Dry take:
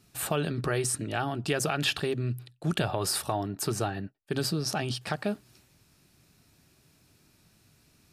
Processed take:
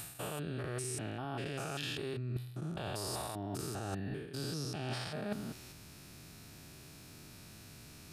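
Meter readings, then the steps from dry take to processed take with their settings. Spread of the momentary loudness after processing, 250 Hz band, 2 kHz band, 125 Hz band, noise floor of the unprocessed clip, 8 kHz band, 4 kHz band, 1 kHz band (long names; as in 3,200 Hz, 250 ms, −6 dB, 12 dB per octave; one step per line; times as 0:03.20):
14 LU, −8.0 dB, −10.5 dB, −7.5 dB, −65 dBFS, −10.0 dB, −10.0 dB, −10.0 dB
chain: spectrum averaged block by block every 200 ms
reversed playback
downward compressor 12 to 1, threshold −47 dBFS, peak gain reduction 19.5 dB
reversed playback
level +11 dB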